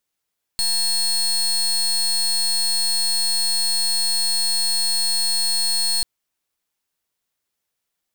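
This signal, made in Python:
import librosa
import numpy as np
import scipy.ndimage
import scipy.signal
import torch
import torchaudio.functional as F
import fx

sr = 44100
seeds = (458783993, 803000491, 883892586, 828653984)

y = fx.pulse(sr, length_s=5.44, hz=4320.0, level_db=-20.0, duty_pct=28)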